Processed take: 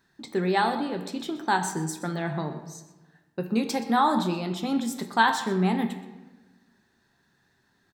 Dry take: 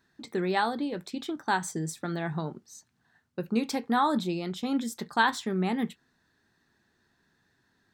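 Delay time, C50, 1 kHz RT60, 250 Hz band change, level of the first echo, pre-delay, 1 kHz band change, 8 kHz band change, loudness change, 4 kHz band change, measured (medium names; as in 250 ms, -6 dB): 124 ms, 9.0 dB, 1.2 s, +3.0 dB, -16.0 dB, 5 ms, +4.0 dB, +3.5 dB, +3.5 dB, +3.0 dB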